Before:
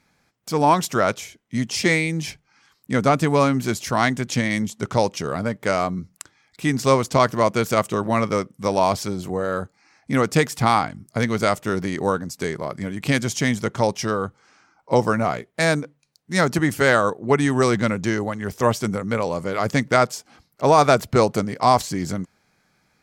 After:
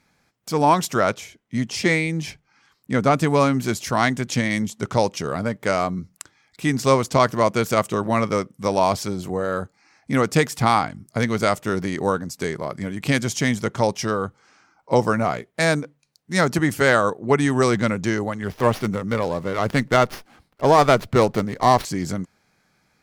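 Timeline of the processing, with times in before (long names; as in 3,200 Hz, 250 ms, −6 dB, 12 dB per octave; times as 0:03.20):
0:01.09–0:03.11: high-shelf EQ 4,300 Hz −5 dB
0:18.43–0:21.85: windowed peak hold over 5 samples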